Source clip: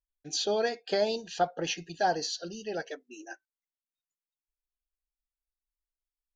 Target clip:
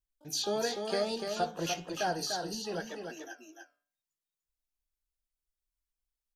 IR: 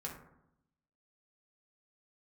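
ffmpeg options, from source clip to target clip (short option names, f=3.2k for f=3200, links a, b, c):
-filter_complex "[0:a]bass=f=250:g=6,treble=f=4k:g=4,bandreject=f=145.7:t=h:w=4,bandreject=f=291.4:t=h:w=4,bandreject=f=437.1:t=h:w=4,bandreject=f=582.8:t=h:w=4,bandreject=f=728.5:t=h:w=4,bandreject=f=874.2:t=h:w=4,bandreject=f=1.0199k:t=h:w=4,bandreject=f=1.1656k:t=h:w=4,bandreject=f=1.3113k:t=h:w=4,bandreject=f=1.457k:t=h:w=4,bandreject=f=1.6027k:t=h:w=4,bandreject=f=1.7484k:t=h:w=4,bandreject=f=1.8941k:t=h:w=4,bandreject=f=2.0398k:t=h:w=4,bandreject=f=2.1855k:t=h:w=4,bandreject=f=2.3312k:t=h:w=4,bandreject=f=2.4769k:t=h:w=4,bandreject=f=2.6226k:t=h:w=4,bandreject=f=2.7683k:t=h:w=4,bandreject=f=2.914k:t=h:w=4,bandreject=f=3.0597k:t=h:w=4,bandreject=f=3.2054k:t=h:w=4,bandreject=f=3.3511k:t=h:w=4,bandreject=f=3.4968k:t=h:w=4,bandreject=f=3.6425k:t=h:w=4,bandreject=f=3.7882k:t=h:w=4,bandreject=f=3.9339k:t=h:w=4,asplit=2[a][b];[b]alimiter=limit=-23dB:level=0:latency=1:release=296,volume=-3dB[c];[a][c]amix=inputs=2:normalize=0,flanger=delay=6.3:depth=8.9:regen=-75:speed=1:shape=triangular,asplit=2[d][e];[e]asetrate=88200,aresample=44100,atempo=0.5,volume=-14dB[f];[d][f]amix=inputs=2:normalize=0,asplit=2[g][h];[h]aecho=0:1:296:0.531[i];[g][i]amix=inputs=2:normalize=0,volume=-3.5dB"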